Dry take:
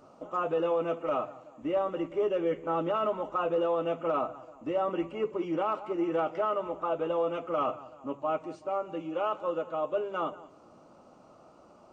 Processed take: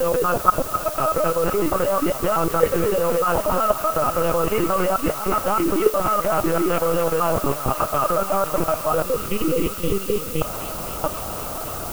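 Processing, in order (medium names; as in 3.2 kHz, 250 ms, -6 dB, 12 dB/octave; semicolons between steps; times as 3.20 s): slices played last to first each 124 ms, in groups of 6; peaking EQ 1.6 kHz +6 dB 0.88 oct; LPC vocoder at 8 kHz pitch kept; reverse; compression 12:1, threshold -36 dBFS, peak gain reduction 14.5 dB; reverse; spectral selection erased 9.05–10.42 s, 530–1900 Hz; level held to a coarse grid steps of 12 dB; feedback echo behind a high-pass 258 ms, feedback 83%, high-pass 1.5 kHz, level -8 dB; added noise blue -62 dBFS; loudness maximiser +29.5 dB; trim -1 dB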